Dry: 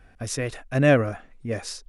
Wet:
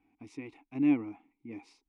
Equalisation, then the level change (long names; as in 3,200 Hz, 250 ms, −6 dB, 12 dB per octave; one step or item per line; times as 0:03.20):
formant filter u
0.0 dB